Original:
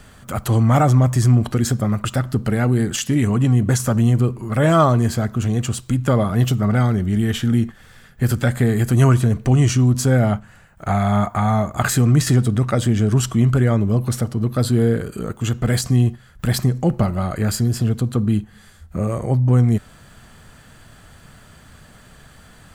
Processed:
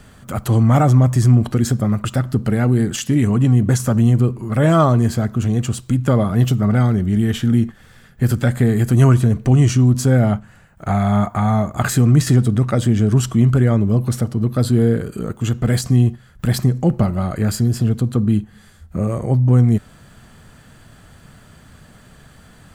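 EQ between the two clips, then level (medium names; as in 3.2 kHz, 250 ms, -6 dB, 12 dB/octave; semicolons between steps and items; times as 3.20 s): peaking EQ 190 Hz +4 dB 2.8 oct; -1.5 dB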